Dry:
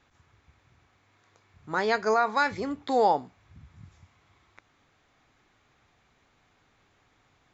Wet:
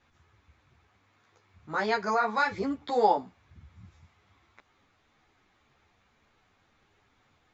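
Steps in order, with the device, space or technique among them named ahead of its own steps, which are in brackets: string-machine ensemble chorus (three-phase chorus; low-pass 6.9 kHz); trim +1.5 dB

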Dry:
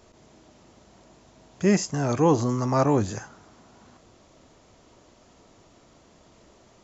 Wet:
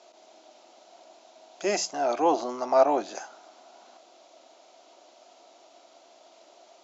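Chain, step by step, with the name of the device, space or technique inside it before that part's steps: phone speaker on a table (cabinet simulation 380–6800 Hz, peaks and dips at 450 Hz -10 dB, 690 Hz +8 dB, 1.1 kHz -6 dB, 1.8 kHz -8 dB, 4 kHz +3 dB); hum notches 60/120/180 Hz; 1.93–3.15 s: distance through air 120 m; trim +2.5 dB

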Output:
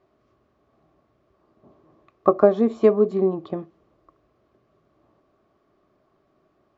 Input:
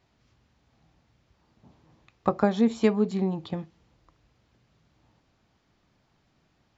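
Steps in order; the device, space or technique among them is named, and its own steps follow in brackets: inside a helmet (treble shelf 4.1 kHz -6.5 dB; small resonant body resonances 390/600/1100 Hz, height 18 dB, ringing for 25 ms); trim -6.5 dB

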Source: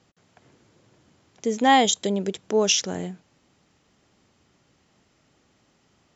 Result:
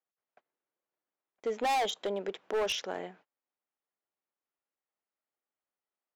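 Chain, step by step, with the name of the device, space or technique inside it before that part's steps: 1.75–2.89 s: dynamic bell 2 kHz, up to -4 dB, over -39 dBFS, Q 1.6; walkie-talkie (band-pass 550–2200 Hz; hard clipper -26.5 dBFS, distortion -4 dB; gate -56 dBFS, range -28 dB)

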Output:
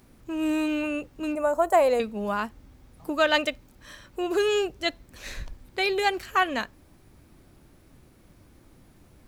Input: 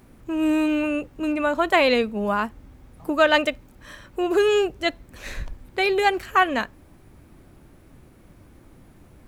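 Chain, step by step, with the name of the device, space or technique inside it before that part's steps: presence and air boost (peaking EQ 4.8 kHz +5.5 dB 1.3 oct; treble shelf 9.4 kHz +5 dB); 1.35–2.00 s: FFT filter 110 Hz 0 dB, 190 Hz -10 dB, 670 Hz +7 dB, 3.7 kHz -18 dB, 7.8 kHz +5 dB; trim -5 dB

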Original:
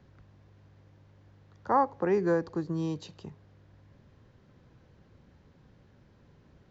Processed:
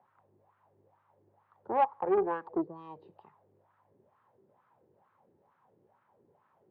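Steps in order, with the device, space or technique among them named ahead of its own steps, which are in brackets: 2.17–2.64 s: peaking EQ 310 Hz +5 dB 1.6 oct; wah-wah guitar rig (wah-wah 2.2 Hz 360–1300 Hz, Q 4.1; valve stage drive 27 dB, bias 0.4; cabinet simulation 98–3700 Hz, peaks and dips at 100 Hz +6 dB, 290 Hz -6 dB, 490 Hz -3 dB, 880 Hz +6 dB, 1.5 kHz -3 dB); trim +7 dB

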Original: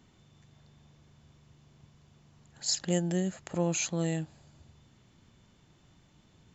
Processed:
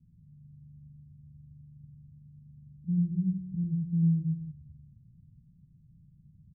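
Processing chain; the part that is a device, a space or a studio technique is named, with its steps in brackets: 2.65–3.90 s: peaking EQ 970 Hz -11.5 dB 2 oct; the neighbour's flat through the wall (low-pass 170 Hz 24 dB/octave; peaking EQ 160 Hz +6.5 dB 0.55 oct); loudspeakers at several distances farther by 33 m -2 dB, 92 m -11 dB; trim +1.5 dB

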